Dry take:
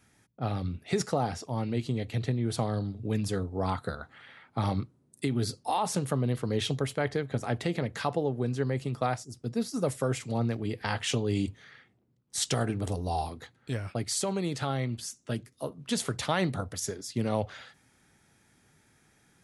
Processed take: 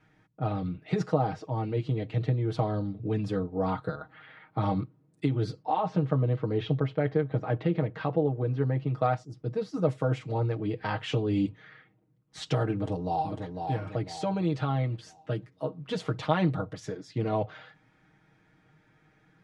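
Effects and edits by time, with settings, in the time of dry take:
5.62–8.94 air absorption 170 m
12.74–13.58 echo throw 0.5 s, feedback 40%, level -5.5 dB
whole clip: LPF 2500 Hz 12 dB/oct; comb 6.4 ms, depth 86%; dynamic EQ 1900 Hz, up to -5 dB, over -50 dBFS, Q 1.8

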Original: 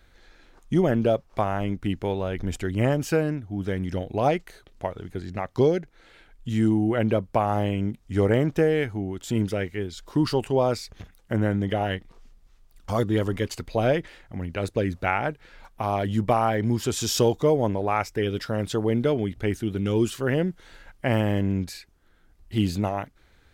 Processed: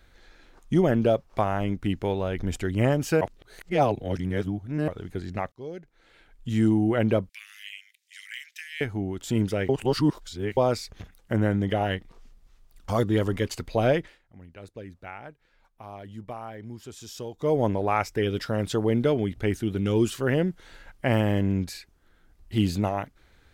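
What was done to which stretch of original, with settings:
3.21–4.88 reverse
5.52–6.58 fade in
7.29–8.81 steep high-pass 1900 Hz 48 dB/oct
9.69–10.57 reverse
13.97–17.58 dip -16 dB, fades 0.22 s

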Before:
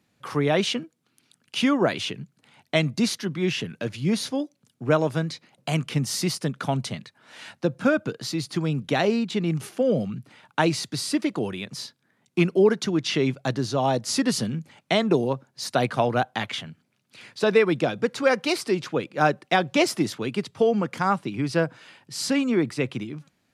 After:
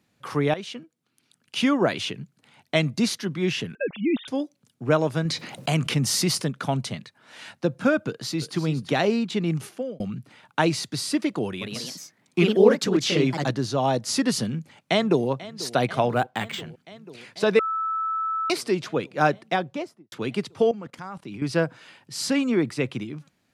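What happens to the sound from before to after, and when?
0.54–1.65 fade in, from -15 dB
3.75–4.28 sine-wave speech
5.25–6.42 fast leveller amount 50%
8.07–8.58 echo throw 0.34 s, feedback 15%, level -12 dB
9.58–10 fade out
11.47–13.59 echoes that change speed 0.143 s, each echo +2 st, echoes 2
14.46–15.28 echo throw 0.49 s, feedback 80%, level -17.5 dB
16.12–16.61 decimation joined by straight lines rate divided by 4×
17.59–18.5 bleep 1310 Hz -23.5 dBFS
19.27–20.12 studio fade out
20.71–21.42 level quantiser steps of 18 dB

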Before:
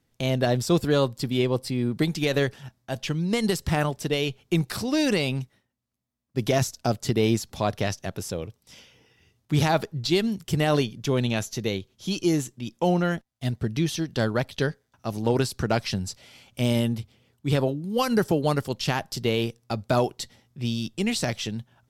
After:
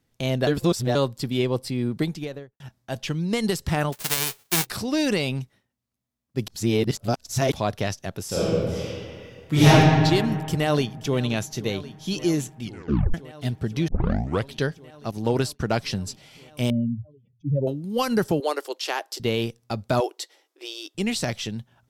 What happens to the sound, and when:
0.47–0.95 reverse
1.87–2.6 studio fade out
3.92–4.65 spectral whitening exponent 0.1
6.48–7.52 reverse
8.27–9.69 reverb throw, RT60 2.1 s, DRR -11 dB
10.24–11.19 echo throw 0.53 s, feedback 85%, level -16.5 dB
12.62 tape stop 0.52 s
13.88 tape start 0.62 s
15.11–15.78 expander -32 dBFS
16.7–17.67 spectral contrast raised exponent 2.9
18.4–19.2 steep high-pass 330 Hz 48 dB/oct
20–20.95 brick-wall FIR high-pass 290 Hz

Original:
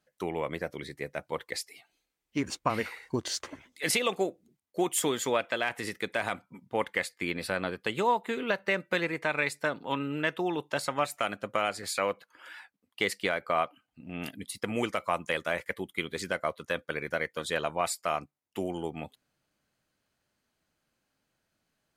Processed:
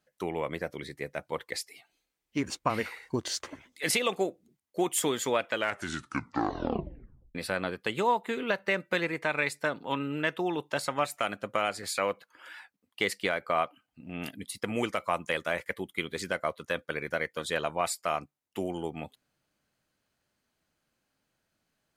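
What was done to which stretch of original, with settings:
5.47 tape stop 1.88 s

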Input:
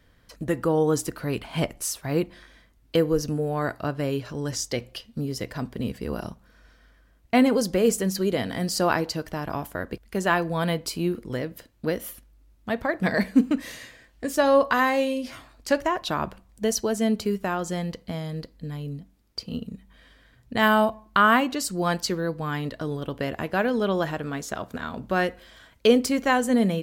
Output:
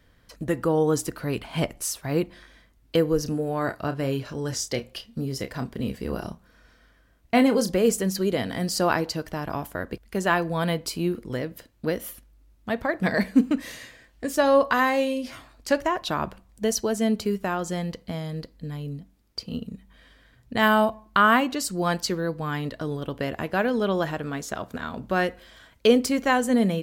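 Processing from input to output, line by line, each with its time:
3.23–7.72 doubler 30 ms -9.5 dB

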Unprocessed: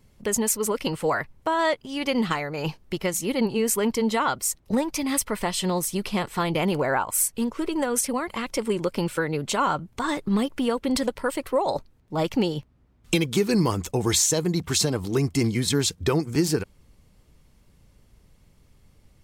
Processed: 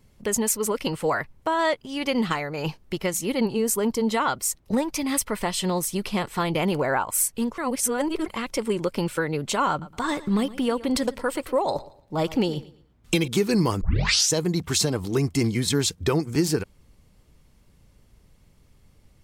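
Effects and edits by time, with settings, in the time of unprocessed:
3.56–4.07 bell 2300 Hz -7 dB 1.2 oct
7.58–8.26 reverse
9.7–13.28 feedback echo 0.114 s, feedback 29%, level -18 dB
13.81 tape start 0.51 s

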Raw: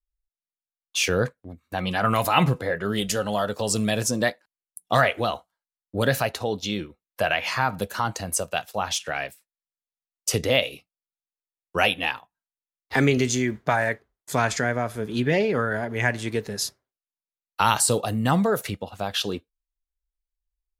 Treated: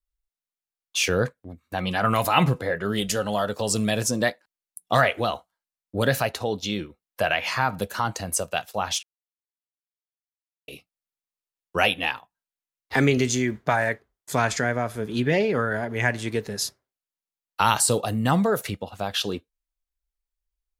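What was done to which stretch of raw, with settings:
9.03–10.68 mute

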